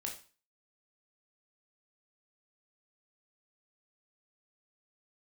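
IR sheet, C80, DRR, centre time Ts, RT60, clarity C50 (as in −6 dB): 14.0 dB, 0.0 dB, 22 ms, 0.35 s, 8.0 dB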